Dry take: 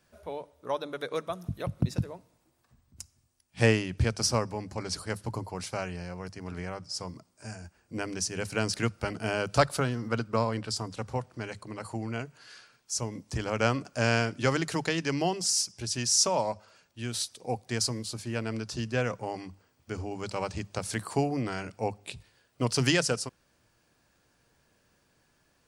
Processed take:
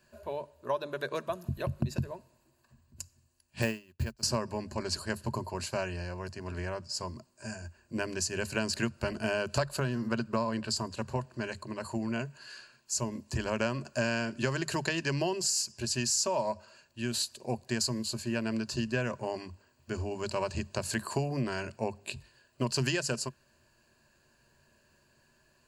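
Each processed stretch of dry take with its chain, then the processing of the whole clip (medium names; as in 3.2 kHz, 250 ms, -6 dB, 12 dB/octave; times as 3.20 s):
3.62–4.23 s: block-companded coder 5-bit + upward expansion 2.5:1, over -41 dBFS
whole clip: rippled EQ curve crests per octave 1.4, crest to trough 10 dB; compression, threshold -26 dBFS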